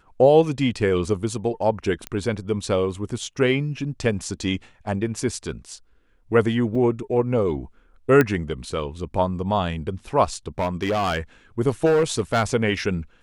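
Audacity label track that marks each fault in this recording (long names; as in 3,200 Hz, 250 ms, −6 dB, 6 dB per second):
2.070000	2.070000	click −13 dBFS
6.750000	6.750000	drop-out 4.4 ms
8.210000	8.210000	click −6 dBFS
10.590000	11.180000	clipping −18.5 dBFS
11.850000	12.430000	clipping −14.5 dBFS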